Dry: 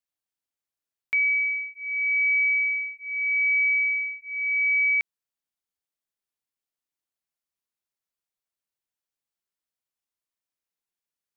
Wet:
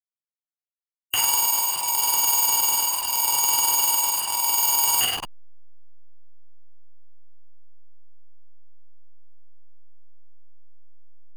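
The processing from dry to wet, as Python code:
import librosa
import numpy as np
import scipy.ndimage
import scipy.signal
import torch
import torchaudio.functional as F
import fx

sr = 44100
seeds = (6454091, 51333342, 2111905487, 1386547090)

p1 = fx.halfwave_hold(x, sr)
p2 = fx.peak_eq(p1, sr, hz=2400.0, db=-13.0, octaves=0.28)
p3 = fx.doubler(p2, sr, ms=20.0, db=-6.5)
p4 = fx.rev_double_slope(p3, sr, seeds[0], early_s=0.48, late_s=1.5, knee_db=-25, drr_db=-4.5)
p5 = fx.granulator(p4, sr, seeds[1], grain_ms=82.0, per_s=20.0, spray_ms=13.0, spread_st=0)
p6 = p5 + fx.echo_feedback(p5, sr, ms=104, feedback_pct=20, wet_db=-23.5, dry=0)
p7 = fx.backlash(p6, sr, play_db=-34.5)
p8 = fx.formant_shift(p7, sr, semitones=4)
p9 = fx.env_flatten(p8, sr, amount_pct=70)
y = p9 * 10.0 ** (-2.0 / 20.0)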